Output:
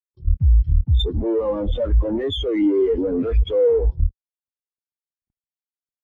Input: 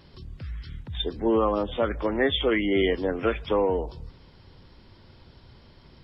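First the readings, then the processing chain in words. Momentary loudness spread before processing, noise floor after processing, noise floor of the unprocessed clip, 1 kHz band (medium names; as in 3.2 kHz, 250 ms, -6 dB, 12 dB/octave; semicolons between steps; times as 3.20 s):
16 LU, under -85 dBFS, -53 dBFS, -8.5 dB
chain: fuzz box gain 44 dB, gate -43 dBFS; level held to a coarse grid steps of 9 dB; spectral contrast expander 2.5:1; trim +4 dB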